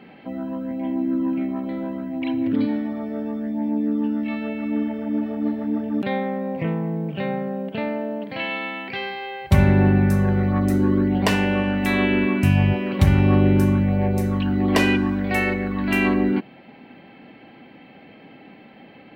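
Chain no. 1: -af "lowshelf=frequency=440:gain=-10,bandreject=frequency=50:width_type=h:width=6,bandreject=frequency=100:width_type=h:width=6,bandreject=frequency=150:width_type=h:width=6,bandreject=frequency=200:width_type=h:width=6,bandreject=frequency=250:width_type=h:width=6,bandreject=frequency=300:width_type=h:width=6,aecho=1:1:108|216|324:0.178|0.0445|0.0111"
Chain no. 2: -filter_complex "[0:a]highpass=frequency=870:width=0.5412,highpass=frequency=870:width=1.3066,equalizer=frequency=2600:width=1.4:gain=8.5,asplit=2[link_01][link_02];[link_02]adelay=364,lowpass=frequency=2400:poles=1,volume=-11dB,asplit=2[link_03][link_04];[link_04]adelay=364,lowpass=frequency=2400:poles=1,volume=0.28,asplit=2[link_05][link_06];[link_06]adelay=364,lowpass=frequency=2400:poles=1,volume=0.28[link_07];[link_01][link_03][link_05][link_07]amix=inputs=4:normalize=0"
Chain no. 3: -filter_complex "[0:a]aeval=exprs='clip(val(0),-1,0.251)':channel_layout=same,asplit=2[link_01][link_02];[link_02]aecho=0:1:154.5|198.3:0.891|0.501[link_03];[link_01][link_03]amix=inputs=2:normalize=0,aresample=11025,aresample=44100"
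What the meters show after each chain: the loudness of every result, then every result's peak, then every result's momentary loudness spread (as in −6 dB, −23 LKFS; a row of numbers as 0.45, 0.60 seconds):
−28.5, −23.5, −19.0 LKFS; −7.0, −2.0, −2.5 dBFS; 10, 24, 11 LU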